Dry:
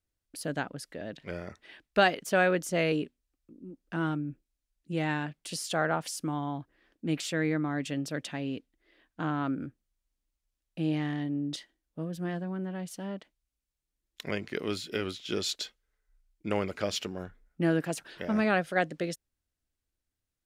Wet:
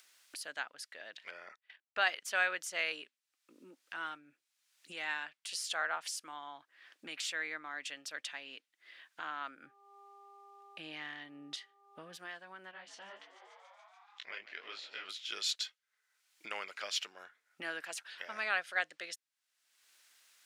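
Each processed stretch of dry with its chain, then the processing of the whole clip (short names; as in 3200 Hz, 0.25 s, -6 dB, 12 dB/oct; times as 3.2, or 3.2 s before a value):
1.3–2.07 high shelf 3800 Hz -11.5 dB + gate -52 dBFS, range -28 dB
9.62–12.16 tone controls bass +9 dB, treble -4 dB + buzz 400 Hz, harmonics 3, -59 dBFS -7 dB/oct
12.71–15.09 Gaussian blur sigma 1.6 samples + frequency-shifting echo 0.144 s, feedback 65%, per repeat +90 Hz, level -16.5 dB + detuned doubles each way 50 cents
whole clip: HPF 1400 Hz 12 dB/oct; high shelf 11000 Hz -11 dB; upward compressor, threshold -43 dBFS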